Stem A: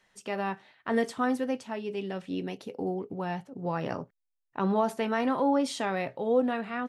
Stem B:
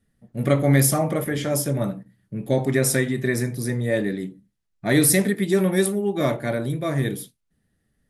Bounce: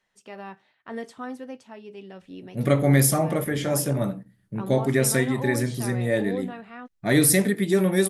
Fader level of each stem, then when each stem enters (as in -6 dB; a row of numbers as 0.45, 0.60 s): -7.5, -1.0 dB; 0.00, 2.20 s